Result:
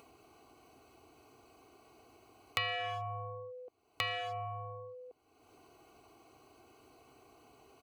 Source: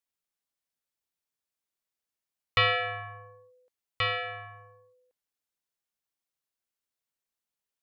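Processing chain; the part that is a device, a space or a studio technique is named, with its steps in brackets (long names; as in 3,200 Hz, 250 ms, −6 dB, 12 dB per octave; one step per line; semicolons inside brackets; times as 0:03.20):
adaptive Wiener filter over 25 samples
high-pass filter 87 Hz 12 dB per octave
comb filter 2.7 ms, depth 75%
upward and downward compression (upward compression, threshold −32 dBFS; downward compressor 6 to 1, threshold −34 dBFS, peak gain reduction 15 dB)
level +1 dB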